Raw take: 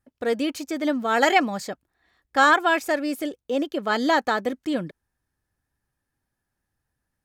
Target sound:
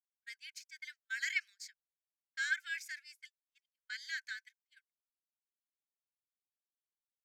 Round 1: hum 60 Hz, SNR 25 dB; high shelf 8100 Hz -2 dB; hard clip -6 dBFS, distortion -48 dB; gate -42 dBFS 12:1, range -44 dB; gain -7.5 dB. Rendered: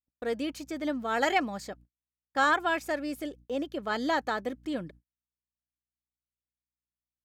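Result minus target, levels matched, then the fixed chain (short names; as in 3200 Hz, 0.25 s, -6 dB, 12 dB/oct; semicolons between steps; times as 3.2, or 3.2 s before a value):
2000 Hz band -3.5 dB
hum 60 Hz, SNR 25 dB; rippled Chebyshev high-pass 1500 Hz, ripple 9 dB; high shelf 8100 Hz -2 dB; hard clip -6 dBFS, distortion -120 dB; gate -42 dBFS 12:1, range -44 dB; gain -7.5 dB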